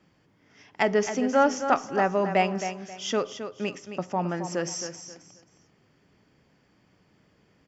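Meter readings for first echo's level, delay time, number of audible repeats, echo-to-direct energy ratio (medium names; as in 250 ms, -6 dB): -9.5 dB, 267 ms, 3, -9.0 dB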